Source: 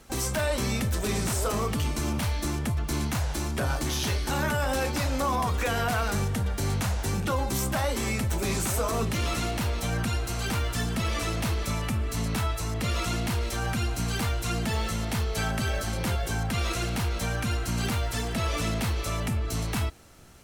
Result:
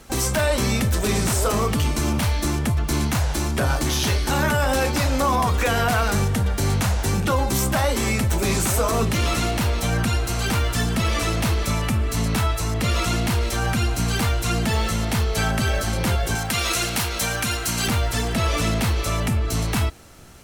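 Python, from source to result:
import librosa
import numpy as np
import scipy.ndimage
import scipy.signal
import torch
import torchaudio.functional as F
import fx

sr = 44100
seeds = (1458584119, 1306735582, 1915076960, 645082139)

y = fx.tilt_eq(x, sr, slope=2.0, at=(16.35, 17.88))
y = y * librosa.db_to_amplitude(6.5)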